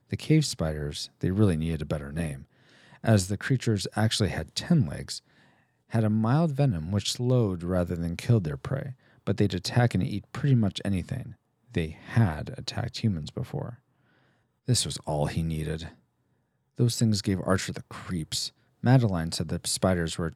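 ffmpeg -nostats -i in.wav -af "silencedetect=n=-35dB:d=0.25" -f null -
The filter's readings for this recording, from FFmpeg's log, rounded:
silence_start: 2.42
silence_end: 3.04 | silence_duration: 0.62
silence_start: 5.18
silence_end: 5.93 | silence_duration: 0.75
silence_start: 8.92
silence_end: 9.27 | silence_duration: 0.36
silence_start: 11.29
silence_end: 11.75 | silence_duration: 0.45
silence_start: 13.70
silence_end: 14.68 | silence_duration: 0.99
silence_start: 15.87
silence_end: 16.79 | silence_duration: 0.92
silence_start: 18.48
silence_end: 18.84 | silence_duration: 0.36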